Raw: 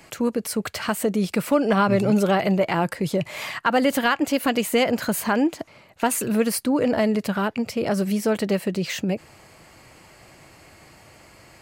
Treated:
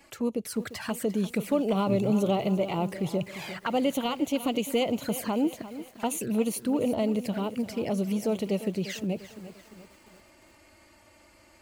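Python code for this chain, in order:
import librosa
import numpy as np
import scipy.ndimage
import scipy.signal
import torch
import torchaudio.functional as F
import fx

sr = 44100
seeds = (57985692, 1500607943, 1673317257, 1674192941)

y = fx.env_flanger(x, sr, rest_ms=3.8, full_db=-20.0)
y = fx.echo_crushed(y, sr, ms=348, feedback_pct=55, bits=7, wet_db=-13.5)
y = y * librosa.db_to_amplitude(-5.0)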